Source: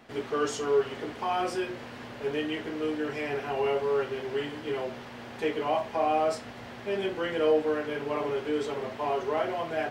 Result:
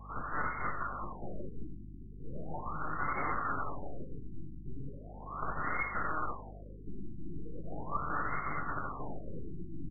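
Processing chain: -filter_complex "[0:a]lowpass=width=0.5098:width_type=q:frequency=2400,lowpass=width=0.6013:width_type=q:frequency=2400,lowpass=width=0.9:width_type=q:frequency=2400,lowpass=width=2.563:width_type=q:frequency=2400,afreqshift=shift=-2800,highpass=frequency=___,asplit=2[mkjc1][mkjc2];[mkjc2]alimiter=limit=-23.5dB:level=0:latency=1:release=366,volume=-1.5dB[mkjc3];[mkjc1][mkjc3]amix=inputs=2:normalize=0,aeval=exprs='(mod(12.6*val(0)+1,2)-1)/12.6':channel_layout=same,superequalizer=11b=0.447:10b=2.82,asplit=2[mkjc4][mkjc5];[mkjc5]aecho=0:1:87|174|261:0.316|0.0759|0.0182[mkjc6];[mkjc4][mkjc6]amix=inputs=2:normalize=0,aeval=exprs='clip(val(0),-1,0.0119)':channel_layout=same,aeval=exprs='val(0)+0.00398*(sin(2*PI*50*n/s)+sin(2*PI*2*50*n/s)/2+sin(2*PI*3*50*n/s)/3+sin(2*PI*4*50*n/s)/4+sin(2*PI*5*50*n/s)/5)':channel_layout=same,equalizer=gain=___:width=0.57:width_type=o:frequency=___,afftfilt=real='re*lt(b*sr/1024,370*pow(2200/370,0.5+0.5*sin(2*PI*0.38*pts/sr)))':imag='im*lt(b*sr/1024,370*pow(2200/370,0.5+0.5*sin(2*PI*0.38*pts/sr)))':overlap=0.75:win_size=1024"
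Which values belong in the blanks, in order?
97, 2, 2200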